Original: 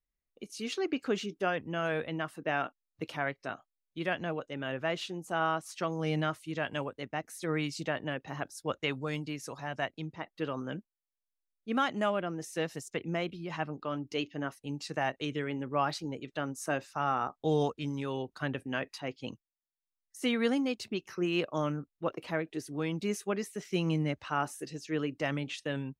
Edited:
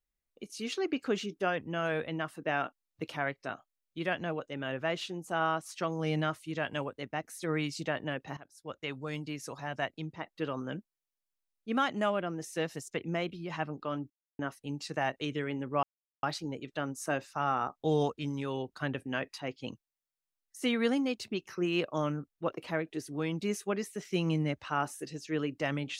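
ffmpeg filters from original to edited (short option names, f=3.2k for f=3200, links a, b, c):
-filter_complex "[0:a]asplit=5[a][b][c][d][e];[a]atrim=end=8.37,asetpts=PTS-STARTPTS,afade=t=out:st=8.366:d=0.004:c=hsin:silence=0.11885[f];[b]atrim=start=8.37:end=14.1,asetpts=PTS-STARTPTS,afade=t=in:d=1.05:silence=0.11885,afade=t=out:st=5.726:d=0.004:c=hsin[g];[c]atrim=start=14.1:end=14.39,asetpts=PTS-STARTPTS,volume=0[h];[d]atrim=start=14.39:end=15.83,asetpts=PTS-STARTPTS,afade=t=in:d=0.004:c=hsin,afade=t=out:st=1.436:d=0.004:c=hsin,apad=pad_dur=0.4[i];[e]atrim=start=15.83,asetpts=PTS-STARTPTS,afade=t=in:d=0.004:c=hsin[j];[f][g][h][i][j]concat=n=5:v=0:a=1"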